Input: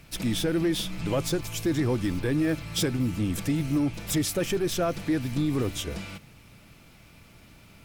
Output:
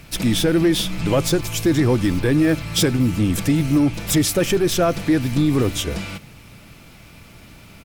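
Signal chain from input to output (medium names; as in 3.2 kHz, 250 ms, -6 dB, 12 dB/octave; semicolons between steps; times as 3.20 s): echo from a far wall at 17 m, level -28 dB; trim +8.5 dB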